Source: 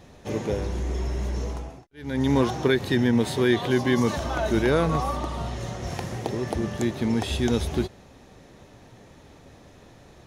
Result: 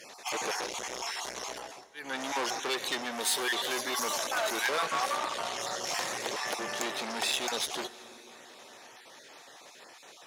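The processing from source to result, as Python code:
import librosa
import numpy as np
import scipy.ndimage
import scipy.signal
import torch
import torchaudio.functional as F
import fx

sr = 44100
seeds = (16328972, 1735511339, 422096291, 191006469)

y = fx.spec_dropout(x, sr, seeds[0], share_pct=20)
y = fx.high_shelf(y, sr, hz=9100.0, db=fx.steps((0.0, -6.5), (3.11, 6.0), (4.66, -7.5)))
y = fx.rev_plate(y, sr, seeds[1], rt60_s=4.2, hf_ratio=0.75, predelay_ms=0, drr_db=18.0)
y = fx.rider(y, sr, range_db=4, speed_s=2.0)
y = fx.high_shelf(y, sr, hz=4100.0, db=8.0)
y = fx.tube_stage(y, sr, drive_db=27.0, bias=0.4)
y = scipy.signal.sosfilt(scipy.signal.bessel(2, 860.0, 'highpass', norm='mag', fs=sr, output='sos'), y)
y = y * librosa.db_to_amplitude(6.0)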